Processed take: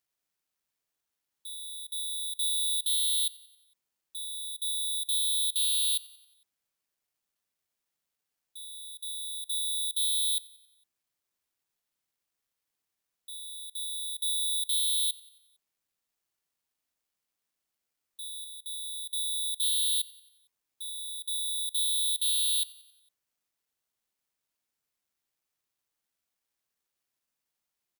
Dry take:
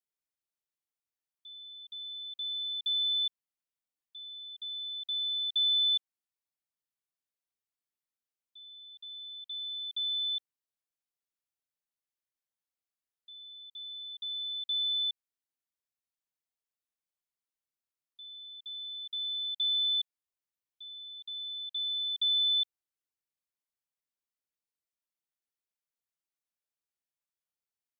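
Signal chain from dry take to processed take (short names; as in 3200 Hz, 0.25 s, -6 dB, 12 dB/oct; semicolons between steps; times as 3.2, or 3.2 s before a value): 18.44–19.63 high shelf 3400 Hz -7.5 dB; overloaded stage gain 33.5 dB; feedback echo 91 ms, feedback 55%, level -19 dB; careless resampling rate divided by 6×, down none, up zero stuff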